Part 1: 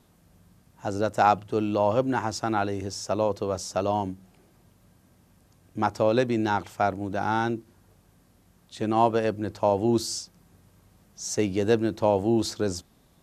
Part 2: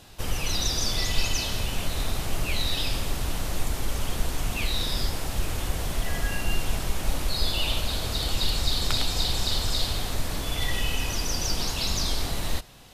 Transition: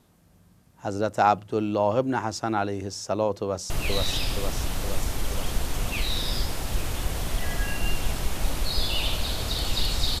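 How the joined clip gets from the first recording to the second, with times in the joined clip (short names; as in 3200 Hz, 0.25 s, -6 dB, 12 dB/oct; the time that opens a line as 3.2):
part 1
3.42–3.7 echo throw 0.47 s, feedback 65%, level -2 dB
3.7 switch to part 2 from 2.34 s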